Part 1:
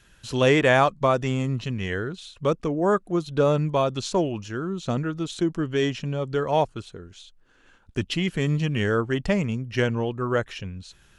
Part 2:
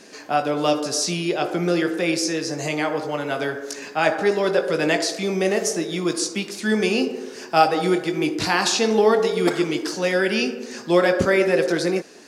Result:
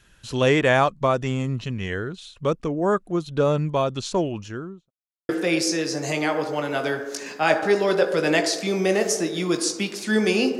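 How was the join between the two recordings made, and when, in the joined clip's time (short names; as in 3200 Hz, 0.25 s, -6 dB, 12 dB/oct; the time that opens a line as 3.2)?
part 1
4.43–4.91 studio fade out
4.91–5.29 mute
5.29 switch to part 2 from 1.85 s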